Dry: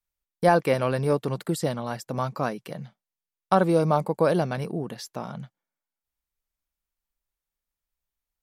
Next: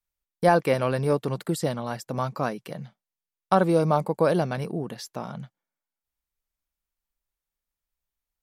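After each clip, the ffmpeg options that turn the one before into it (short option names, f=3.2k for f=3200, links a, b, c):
-af anull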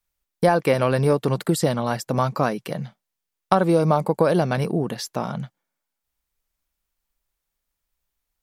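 -af "acompressor=threshold=-22dB:ratio=4,volume=7.5dB"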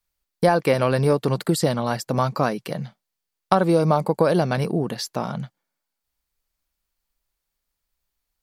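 -af "equalizer=f=4.5k:t=o:w=0.26:g=4.5"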